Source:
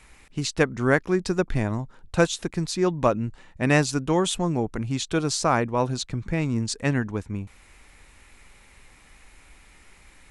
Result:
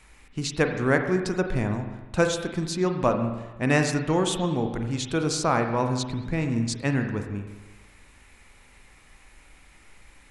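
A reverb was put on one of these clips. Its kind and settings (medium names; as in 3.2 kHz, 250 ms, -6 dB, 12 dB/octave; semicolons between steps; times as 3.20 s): spring tank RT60 1.2 s, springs 39/43 ms, chirp 70 ms, DRR 5 dB; trim -2 dB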